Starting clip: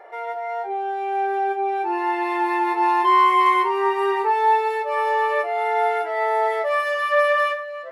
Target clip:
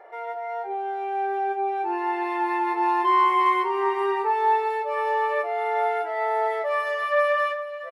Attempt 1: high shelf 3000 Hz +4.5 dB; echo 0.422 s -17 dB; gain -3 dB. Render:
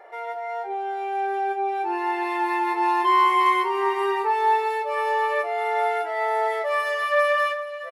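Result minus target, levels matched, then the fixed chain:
8000 Hz band +7.5 dB
high shelf 3000 Hz -5 dB; echo 0.422 s -17 dB; gain -3 dB

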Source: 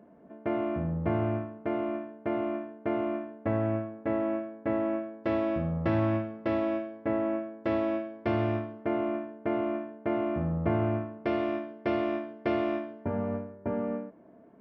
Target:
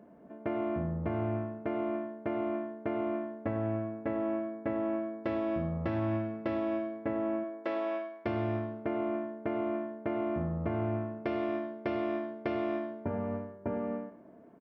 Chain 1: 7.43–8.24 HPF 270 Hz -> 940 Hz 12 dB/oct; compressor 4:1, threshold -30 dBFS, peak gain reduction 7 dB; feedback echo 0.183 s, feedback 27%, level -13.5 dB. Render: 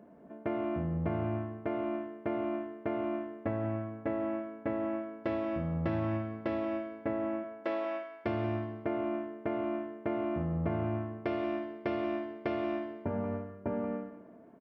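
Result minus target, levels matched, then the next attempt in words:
echo 83 ms late
7.43–8.24 HPF 270 Hz -> 940 Hz 12 dB/oct; compressor 4:1, threshold -30 dBFS, peak gain reduction 7 dB; feedback echo 0.1 s, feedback 27%, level -13.5 dB

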